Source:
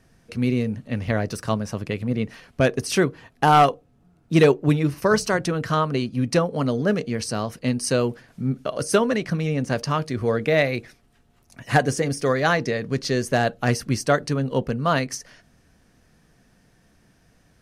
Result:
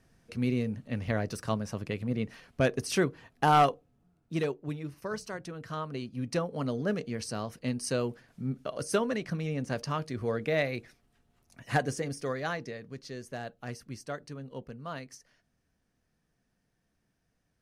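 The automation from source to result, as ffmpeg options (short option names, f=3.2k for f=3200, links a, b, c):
-af "volume=1dB,afade=t=out:st=3.66:d=0.85:silence=0.316228,afade=t=in:st=5.55:d=1.16:silence=0.398107,afade=t=out:st=11.73:d=1.23:silence=0.334965"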